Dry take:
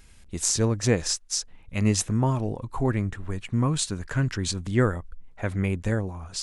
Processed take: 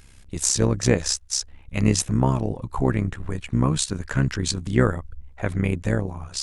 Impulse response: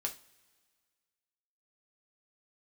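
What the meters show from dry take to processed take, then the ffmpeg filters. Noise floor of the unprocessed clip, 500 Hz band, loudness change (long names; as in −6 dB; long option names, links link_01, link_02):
−50 dBFS, +2.5 dB, +2.5 dB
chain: -af "tremolo=f=66:d=0.75,volume=6dB"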